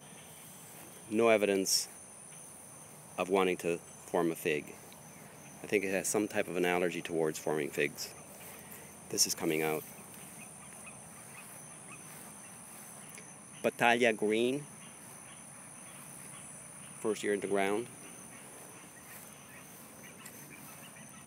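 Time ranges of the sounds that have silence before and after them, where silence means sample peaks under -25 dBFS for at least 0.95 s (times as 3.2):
1.15–1.79
3.19–4.57
5.73–7.86
9.15–9.75
13.64–14.51
17.06–17.79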